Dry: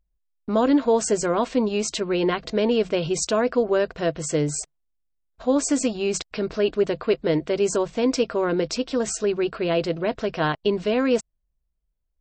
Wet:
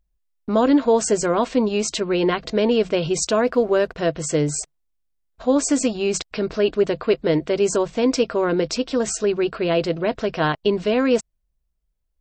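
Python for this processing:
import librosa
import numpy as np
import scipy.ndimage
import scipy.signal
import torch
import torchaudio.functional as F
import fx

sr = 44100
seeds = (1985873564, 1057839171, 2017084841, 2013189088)

y = fx.backlash(x, sr, play_db=-49.5, at=(3.43, 3.95), fade=0.02)
y = y * 10.0 ** (2.5 / 20.0)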